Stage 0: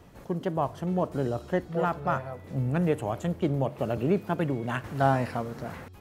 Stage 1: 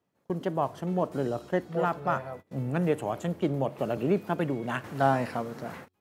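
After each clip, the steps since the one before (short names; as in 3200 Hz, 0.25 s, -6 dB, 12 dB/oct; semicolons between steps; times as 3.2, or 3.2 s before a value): HPF 150 Hz 12 dB/oct; gate -42 dBFS, range -24 dB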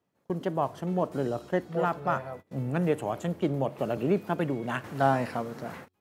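nothing audible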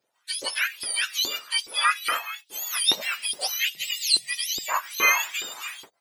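spectrum mirrored in octaves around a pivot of 1300 Hz; spectral gain 3.75–4.69, 210–1800 Hz -25 dB; LFO high-pass saw up 2.4 Hz 340–4100 Hz; gain +6 dB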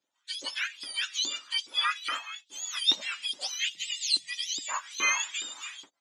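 speaker cabinet 150–7700 Hz, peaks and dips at 280 Hz +7 dB, 450 Hz -8 dB, 690 Hz -5 dB, 3400 Hz +7 dB, 6900 Hz +9 dB; gain -7.5 dB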